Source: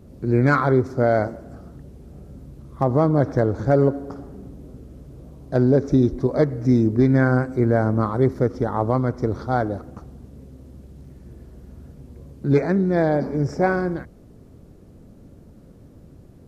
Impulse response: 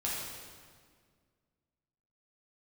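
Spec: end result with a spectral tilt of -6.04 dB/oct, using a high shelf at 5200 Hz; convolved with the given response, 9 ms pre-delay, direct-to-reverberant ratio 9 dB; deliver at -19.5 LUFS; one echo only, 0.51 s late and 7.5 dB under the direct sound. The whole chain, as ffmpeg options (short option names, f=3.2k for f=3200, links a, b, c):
-filter_complex "[0:a]highshelf=f=5.2k:g=4.5,aecho=1:1:510:0.422,asplit=2[a][b];[1:a]atrim=start_sample=2205,adelay=9[c];[b][c]afir=irnorm=-1:irlink=0,volume=-14dB[d];[a][d]amix=inputs=2:normalize=0,volume=0.5dB"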